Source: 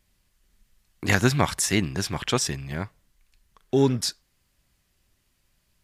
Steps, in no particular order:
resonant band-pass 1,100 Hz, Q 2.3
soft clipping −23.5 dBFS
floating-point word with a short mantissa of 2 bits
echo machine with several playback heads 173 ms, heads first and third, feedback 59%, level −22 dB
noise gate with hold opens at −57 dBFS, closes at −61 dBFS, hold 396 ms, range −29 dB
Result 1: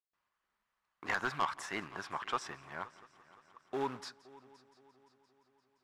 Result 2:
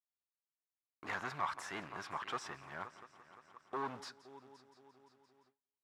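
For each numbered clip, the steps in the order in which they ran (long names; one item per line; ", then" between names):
noise gate with hold, then floating-point word with a short mantissa, then resonant band-pass, then soft clipping, then echo machine with several playback heads
echo machine with several playback heads, then soft clipping, then floating-point word with a short mantissa, then resonant band-pass, then noise gate with hold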